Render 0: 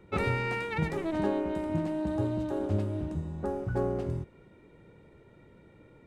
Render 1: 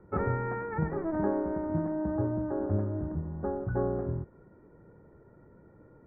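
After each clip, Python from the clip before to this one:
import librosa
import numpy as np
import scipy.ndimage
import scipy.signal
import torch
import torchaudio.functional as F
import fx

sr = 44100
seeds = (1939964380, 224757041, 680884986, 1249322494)

y = scipy.signal.sosfilt(scipy.signal.butter(8, 1700.0, 'lowpass', fs=sr, output='sos'), x)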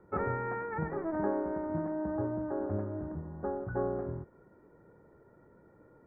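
y = fx.low_shelf(x, sr, hz=250.0, db=-8.5)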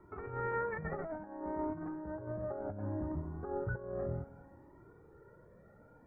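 y = fx.echo_feedback(x, sr, ms=229, feedback_pct=47, wet_db=-19)
y = fx.over_compress(y, sr, threshold_db=-36.0, ratio=-0.5)
y = fx.comb_cascade(y, sr, direction='rising', hz=0.63)
y = F.gain(torch.from_numpy(y), 2.5).numpy()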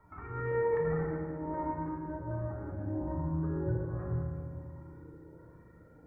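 y = fx.filter_lfo_notch(x, sr, shape='saw_up', hz=1.3, low_hz=320.0, high_hz=1800.0, q=0.96)
y = fx.rev_fdn(y, sr, rt60_s=2.0, lf_ratio=1.5, hf_ratio=0.7, size_ms=19.0, drr_db=-2.5)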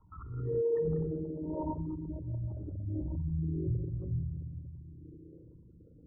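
y = fx.envelope_sharpen(x, sr, power=3.0)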